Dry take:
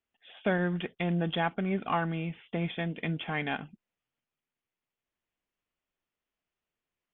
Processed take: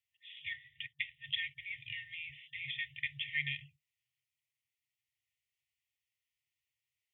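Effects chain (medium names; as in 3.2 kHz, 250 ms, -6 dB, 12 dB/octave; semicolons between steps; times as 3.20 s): FFT band-reject 140–1800 Hz; high-pass 100 Hz 12 dB/octave; 0.53–1.24 s: upward expansion 1.5:1, over -51 dBFS; trim +1.5 dB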